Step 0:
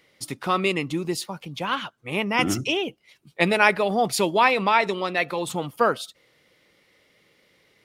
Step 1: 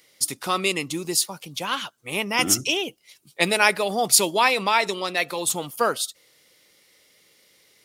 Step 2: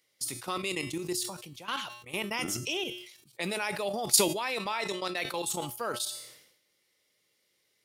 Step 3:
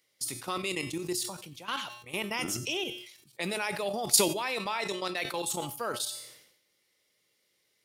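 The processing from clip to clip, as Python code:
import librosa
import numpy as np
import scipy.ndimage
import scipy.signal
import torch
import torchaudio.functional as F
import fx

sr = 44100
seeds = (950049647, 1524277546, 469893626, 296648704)

y1 = fx.bass_treble(x, sr, bass_db=-4, treble_db=15)
y1 = F.gain(torch.from_numpy(y1), -1.5).numpy()
y2 = fx.level_steps(y1, sr, step_db=14)
y2 = fx.comb_fb(y2, sr, f0_hz=120.0, decay_s=0.49, harmonics='odd', damping=0.0, mix_pct=60)
y2 = fx.sustainer(y2, sr, db_per_s=73.0)
y2 = F.gain(torch.from_numpy(y2), 3.0).numpy()
y3 = y2 + 10.0 ** (-19.5 / 20.0) * np.pad(y2, (int(93 * sr / 1000.0), 0))[:len(y2)]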